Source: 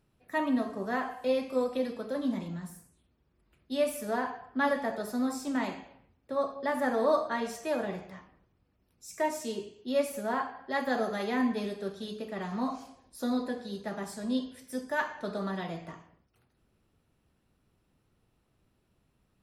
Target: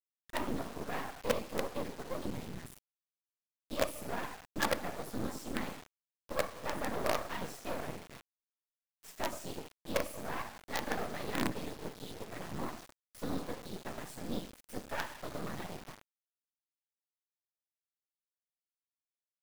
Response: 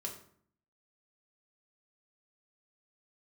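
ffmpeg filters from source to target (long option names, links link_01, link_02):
-af "afftfilt=real='hypot(re,im)*cos(2*PI*random(0))':imag='hypot(re,im)*sin(2*PI*random(1))':win_size=512:overlap=0.75,aeval=exprs='0.119*(cos(1*acos(clip(val(0)/0.119,-1,1)))-cos(1*PI/2))+0.0106*(cos(5*acos(clip(val(0)/0.119,-1,1)))-cos(5*PI/2))':channel_layout=same,acrusher=bits=5:dc=4:mix=0:aa=0.000001"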